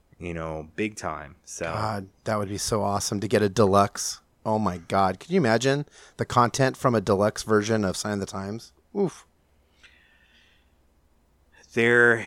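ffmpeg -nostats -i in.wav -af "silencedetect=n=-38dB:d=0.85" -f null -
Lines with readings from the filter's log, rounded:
silence_start: 9.86
silence_end: 11.74 | silence_duration: 1.88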